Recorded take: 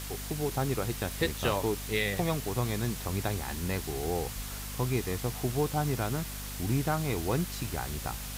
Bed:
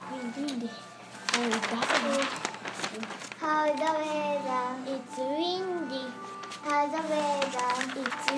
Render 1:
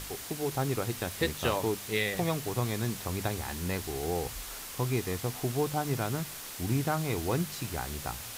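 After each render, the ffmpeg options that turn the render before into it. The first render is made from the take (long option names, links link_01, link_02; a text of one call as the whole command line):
ffmpeg -i in.wav -af "bandreject=frequency=50:width_type=h:width=4,bandreject=frequency=100:width_type=h:width=4,bandreject=frequency=150:width_type=h:width=4,bandreject=frequency=200:width_type=h:width=4,bandreject=frequency=250:width_type=h:width=4" out.wav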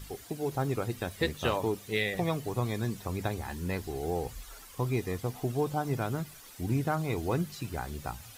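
ffmpeg -i in.wav -af "afftdn=noise_reduction=12:noise_floor=-42" out.wav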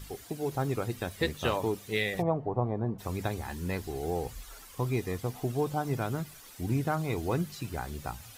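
ffmpeg -i in.wav -filter_complex "[0:a]asplit=3[link_01][link_02][link_03];[link_01]afade=type=out:start_time=2.21:duration=0.02[link_04];[link_02]lowpass=frequency=790:width_type=q:width=2.1,afade=type=in:start_time=2.21:duration=0.02,afade=type=out:start_time=2.98:duration=0.02[link_05];[link_03]afade=type=in:start_time=2.98:duration=0.02[link_06];[link_04][link_05][link_06]amix=inputs=3:normalize=0" out.wav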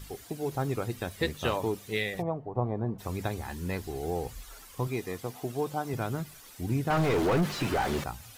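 ffmpeg -i in.wav -filter_complex "[0:a]asettb=1/sr,asplit=3[link_01][link_02][link_03];[link_01]atrim=end=4.874[link_04];[link_02]atrim=start=4.87:end=5.94,asetpts=PTS-STARTPTS,afade=type=in:duration=0.004:curve=qsin,afade=type=out:start_time=1.066:duration=0.004:curve=qsin,highpass=frequency=220:poles=1[link_05];[link_03]atrim=start=5.936[link_06];[link_04][link_05]acrossfade=duration=0.004:curve1=hsin:curve2=qsin[link_07];[link_07][link_06]acrossfade=duration=0.004:curve1=qsin:curve2=hsin,asettb=1/sr,asplit=3[link_08][link_09][link_10];[link_08]atrim=end=6.904[link_11];[link_09]atrim=start=6.9:end=8.04,asetpts=PTS-STARTPTS,afade=type=in:duration=0.004:curve=qsin,afade=type=out:start_time=1.136:duration=0.004:curve=qsin,asplit=2[link_12][link_13];[link_13]highpass=frequency=720:poles=1,volume=34dB,asoftclip=type=tanh:threshold=-17dB[link_14];[link_12][link_14]amix=inputs=2:normalize=0,lowpass=frequency=1100:poles=1,volume=-6dB[link_15];[link_10]atrim=start=8.036[link_16];[link_11][link_15]acrossfade=duration=0.004:curve1=hsin:curve2=qsin[link_17];[link_17][link_16]acrossfade=duration=0.004:curve1=qsin:curve2=hsin,asplit=2[link_18][link_19];[link_18]atrim=end=2.55,asetpts=PTS-STARTPTS,afade=type=out:start_time=1.88:duration=0.67:silence=0.446684[link_20];[link_19]atrim=start=2.55,asetpts=PTS-STARTPTS,afade=type=in:duration=0.004:curve=hsin:silence=0.446684[link_21];[link_20][link_21]concat=n=2:v=0:a=1" out.wav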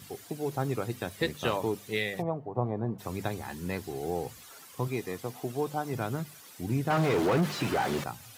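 ffmpeg -i in.wav -af "highpass=frequency=100:width=0.5412,highpass=frequency=100:width=1.3066" out.wav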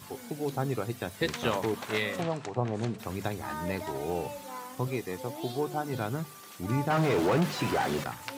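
ffmpeg -i in.wav -i bed.wav -filter_complex "[1:a]volume=-11.5dB[link_01];[0:a][link_01]amix=inputs=2:normalize=0" out.wav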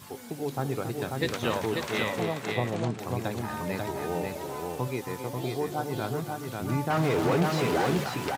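ffmpeg -i in.wav -af "aecho=1:1:275|540:0.299|0.668" out.wav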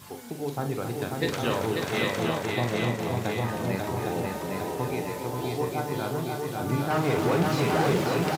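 ffmpeg -i in.wav -filter_complex "[0:a]asplit=2[link_01][link_02];[link_02]adelay=42,volume=-8dB[link_03];[link_01][link_03]amix=inputs=2:normalize=0,aecho=1:1:808:0.668" out.wav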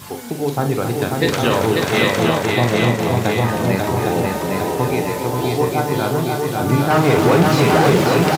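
ffmpeg -i in.wav -af "volume=11dB,alimiter=limit=-3dB:level=0:latency=1" out.wav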